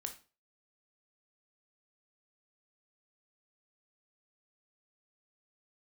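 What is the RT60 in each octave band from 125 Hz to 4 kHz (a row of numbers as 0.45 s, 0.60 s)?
0.40 s, 0.40 s, 0.40 s, 0.35 s, 0.30 s, 0.30 s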